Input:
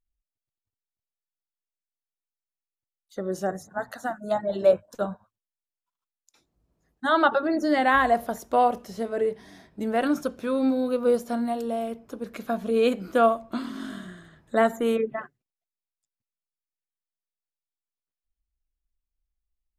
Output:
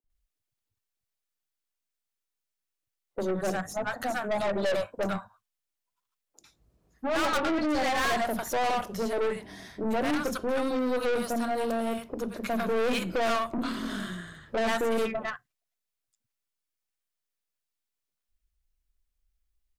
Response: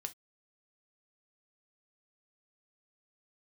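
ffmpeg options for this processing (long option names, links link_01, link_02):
-filter_complex "[0:a]acrossover=split=250|810[link_01][link_02][link_03];[link_01]adelay=40[link_04];[link_03]adelay=100[link_05];[link_04][link_02][link_05]amix=inputs=3:normalize=0,asplit=2[link_06][link_07];[1:a]atrim=start_sample=2205[link_08];[link_07][link_08]afir=irnorm=-1:irlink=0,volume=-8dB[link_09];[link_06][link_09]amix=inputs=2:normalize=0,aeval=exprs='(tanh(31.6*val(0)+0.4)-tanh(0.4))/31.6':channel_layout=same,volume=5dB"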